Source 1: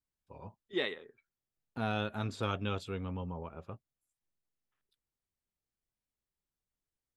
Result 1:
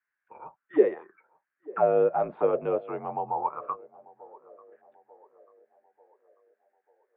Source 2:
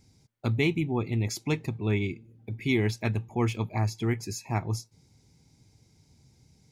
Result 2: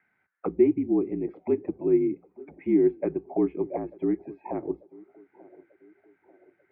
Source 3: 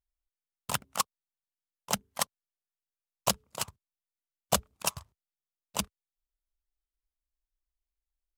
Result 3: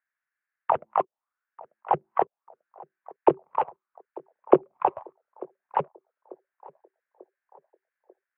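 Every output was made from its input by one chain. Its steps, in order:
in parallel at +1 dB: compression, threshold -33 dBFS; on the sum: auto-wah 410–1700 Hz, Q 6.3, down, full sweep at -22.5 dBFS; mistuned SSB -51 Hz 170–2600 Hz; band-passed feedback delay 891 ms, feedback 52%, band-pass 520 Hz, level -21 dB; normalise loudness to -27 LUFS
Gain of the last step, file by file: +17.0 dB, +10.5 dB, +17.0 dB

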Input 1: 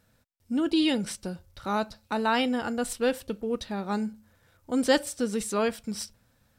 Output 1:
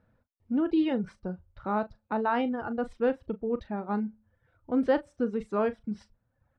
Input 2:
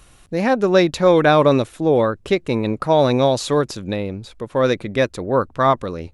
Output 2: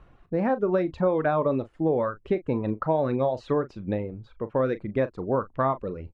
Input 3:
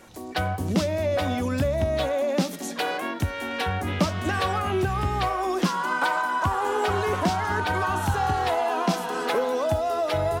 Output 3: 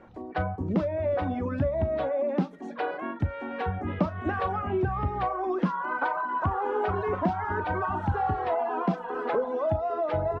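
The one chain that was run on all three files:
reverb removal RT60 0.92 s; low-pass 1.4 kHz 12 dB/octave; compression 5:1, threshold -18 dBFS; doubling 38 ms -14 dB; peak normalisation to -12 dBFS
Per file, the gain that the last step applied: 0.0 dB, -2.5 dB, -0.5 dB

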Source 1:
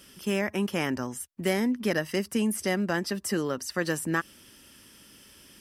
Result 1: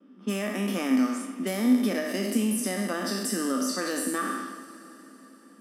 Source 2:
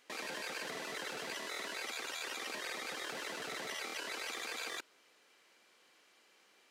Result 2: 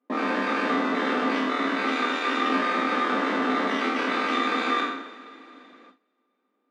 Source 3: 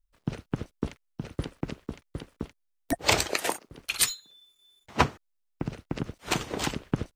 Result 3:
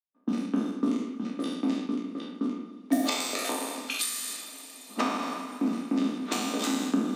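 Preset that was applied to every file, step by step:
spectral sustain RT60 1.04 s; dynamic bell 640 Hz, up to +6 dB, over -43 dBFS, Q 3; level-controlled noise filter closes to 720 Hz, open at -24 dBFS; treble shelf 3.8 kHz +8.5 dB; two-slope reverb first 0.4 s, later 4.6 s, from -17 dB, DRR 7.5 dB; compression 6:1, threshold -21 dBFS; gate with hold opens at -58 dBFS; elliptic high-pass 190 Hz, stop band 40 dB; small resonant body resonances 260/1200/3600 Hz, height 17 dB, ringing for 80 ms; peak normalisation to -12 dBFS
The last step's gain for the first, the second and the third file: -5.5 dB, +13.0 dB, -7.0 dB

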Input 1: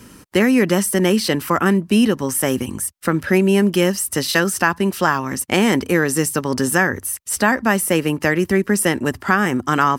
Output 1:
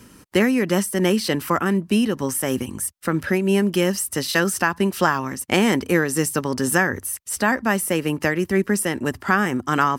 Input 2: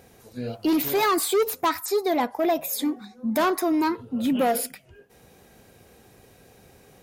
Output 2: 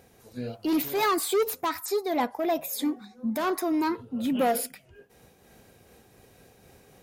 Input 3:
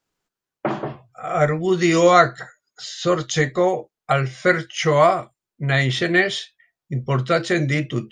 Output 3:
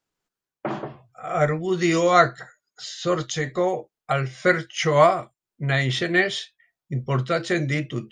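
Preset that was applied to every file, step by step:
random flutter of the level, depth 60%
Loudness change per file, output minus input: -3.0 LU, -3.5 LU, -3.0 LU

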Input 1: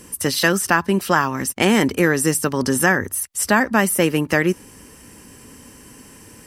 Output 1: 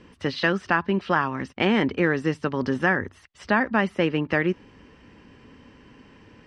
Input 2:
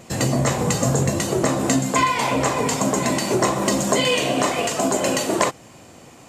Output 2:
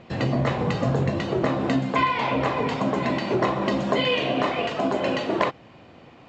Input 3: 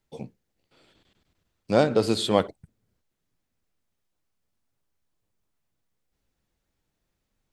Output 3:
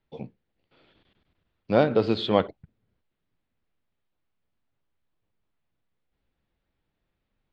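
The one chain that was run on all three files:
low-pass 3.8 kHz 24 dB/octave; normalise loudness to -24 LUFS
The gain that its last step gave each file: -5.0 dB, -3.0 dB, 0.0 dB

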